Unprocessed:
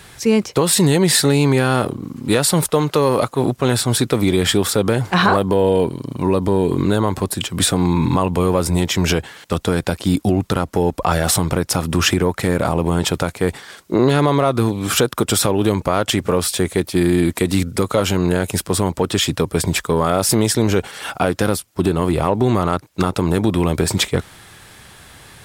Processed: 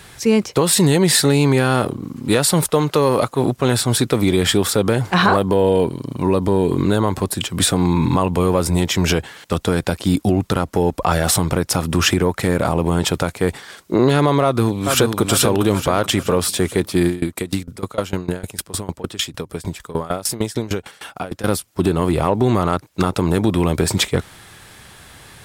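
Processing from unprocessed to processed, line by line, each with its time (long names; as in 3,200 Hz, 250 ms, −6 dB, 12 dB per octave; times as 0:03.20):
0:14.43–0:15.20: delay throw 430 ms, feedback 50%, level −5 dB
0:17.07–0:21.44: tremolo with a ramp in dB decaying 6.6 Hz, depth 21 dB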